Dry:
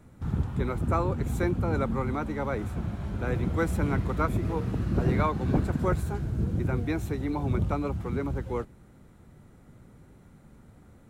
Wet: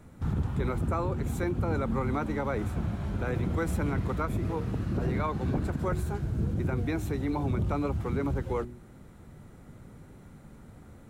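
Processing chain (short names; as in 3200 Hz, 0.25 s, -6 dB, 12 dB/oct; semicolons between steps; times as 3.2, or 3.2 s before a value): vocal rider 2 s; de-hum 60.52 Hz, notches 6; limiter -20.5 dBFS, peak gain reduction 6 dB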